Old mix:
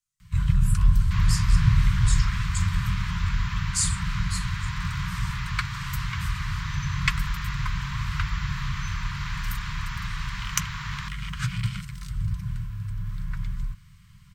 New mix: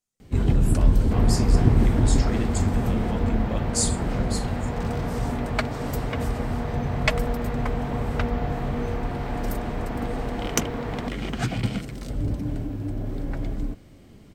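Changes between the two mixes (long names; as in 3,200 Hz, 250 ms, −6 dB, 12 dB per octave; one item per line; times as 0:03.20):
second sound: add low-pass filter 1,100 Hz 6 dB per octave
master: remove Chebyshev band-stop filter 180–1,000 Hz, order 5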